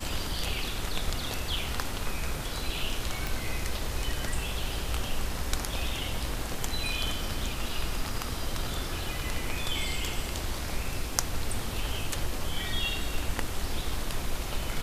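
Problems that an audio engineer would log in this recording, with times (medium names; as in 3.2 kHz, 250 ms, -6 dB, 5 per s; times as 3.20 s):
3.27 s: pop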